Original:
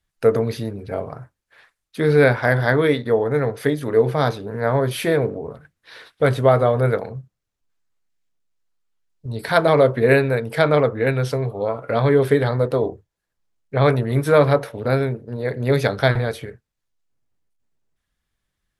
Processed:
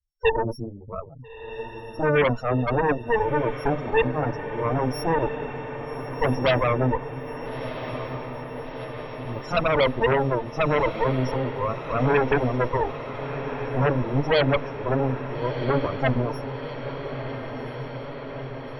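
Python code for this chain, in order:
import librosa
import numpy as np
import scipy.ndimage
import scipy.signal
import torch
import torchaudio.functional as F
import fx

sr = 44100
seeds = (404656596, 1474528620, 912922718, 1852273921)

p1 = np.r_[np.sort(x[:len(x) // 8 * 8].reshape(-1, 8), axis=1).ravel(), x[len(x) // 8 * 8:]]
p2 = fx.spec_topn(p1, sr, count=4)
p3 = fx.cheby_harmonics(p2, sr, harmonics=(8,), levels_db=(-9,), full_scale_db=-6.5)
p4 = p3 + fx.echo_diffused(p3, sr, ms=1344, feedback_pct=73, wet_db=-10.5, dry=0)
y = p4 * 10.0 ** (-5.5 / 20.0)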